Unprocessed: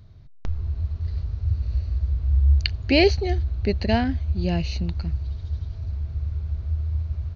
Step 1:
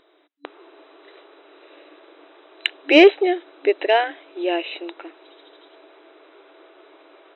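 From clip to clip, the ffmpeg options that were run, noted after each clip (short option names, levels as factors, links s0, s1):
-af "afftfilt=real='re*between(b*sr/4096,280,4000)':imag='im*between(b*sr/4096,280,4000)':win_size=4096:overlap=0.75,acontrast=46,volume=1.33"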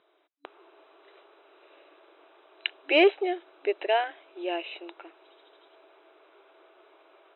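-af "highpass=200,equalizer=f=290:t=q:w=4:g=-10,equalizer=f=490:t=q:w=4:g=-4,equalizer=f=1900:t=q:w=4:g=-5,lowpass=f=3500:w=0.5412,lowpass=f=3500:w=1.3066,volume=0.501"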